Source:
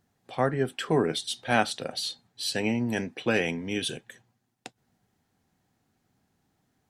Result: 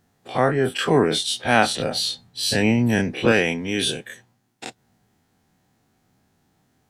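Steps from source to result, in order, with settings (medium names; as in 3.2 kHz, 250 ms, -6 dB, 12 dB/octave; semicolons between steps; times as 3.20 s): every event in the spectrogram widened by 60 ms; 1.69–3.32 s: bass shelf 180 Hz +9.5 dB; trim +3.5 dB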